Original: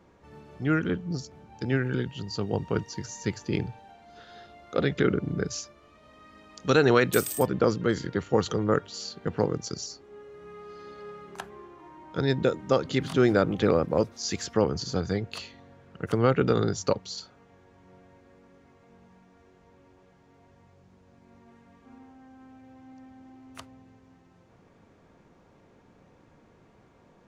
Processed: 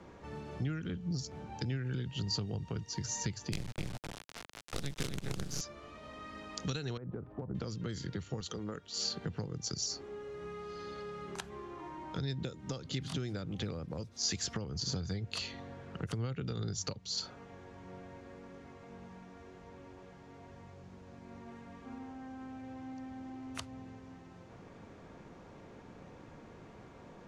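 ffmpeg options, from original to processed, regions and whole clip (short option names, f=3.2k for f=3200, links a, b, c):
-filter_complex "[0:a]asettb=1/sr,asplit=3[a][b][c];[a]atrim=end=3.524[d];[b]atrim=start=3.52:end=5.61,asetpts=PTS-STARTPTS,afade=t=in:d=0.004:c=qsin,afade=t=out:st=2.086:d=0.004:c=qsin,asplit=2[e][f];[f]adelay=257,lowpass=f=4.6k:p=1,volume=-4.5dB,asplit=2[g][h];[h]adelay=257,lowpass=f=4.6k:p=1,volume=0.18,asplit=2[i][j];[j]adelay=257,lowpass=f=4.6k:p=1,volume=0.18[k];[e][g][i][k]amix=inputs=4:normalize=0,atrim=end_sample=92169,acrusher=bits=4:dc=4:mix=0:aa=0.000001[l];[c]atrim=start=5.606[m];[d][l]acrossfade=d=0.004:c1=hsin:c2=qsin[n];[n][m]acrossfade=d=0.004:c1=qsin:c2=hsin,asettb=1/sr,asplit=3[o][p][q];[o]atrim=end=6.974[r];[p]atrim=start=6.97:end=7.55,asetpts=PTS-STARTPTS,afade=t=in:d=0.004:c=qsin,afade=t=out:st=0.576:d=0.004:c=qsin,lowpass=f=1.1k:w=0.5412,lowpass=f=1.1k:w=1.3066,acompressor=threshold=-25dB:ratio=5:attack=3.2:release=140:knee=1:detection=peak[s];[q]atrim=start=7.546[t];[r][s]acrossfade=d=0.004:c1=hsin:c2=qsin[u];[u][t]acrossfade=d=0.004:c1=qsin:c2=hsin,asettb=1/sr,asplit=3[v][w][x];[v]atrim=end=8.404[y];[w]atrim=start=8.4:end=8.97,asetpts=PTS-STARTPTS,afade=t=in:d=0.004:c=qsin,afade=t=out:st=0.566:d=0.004:c=qsin,highpass=51,equalizer=f=120:w=2.3:g=-14.5[z];[x]atrim=start=8.966[aa];[y][z]acrossfade=d=0.004:c1=hsin:c2=qsin[ab];[ab][aa]acrossfade=d=0.004:c1=qsin:c2=hsin,acompressor=threshold=-36dB:ratio=3,lowpass=9.4k,acrossover=split=170|3000[ac][ad][ae];[ad]acompressor=threshold=-48dB:ratio=6[af];[ac][af][ae]amix=inputs=3:normalize=0,volume=5.5dB"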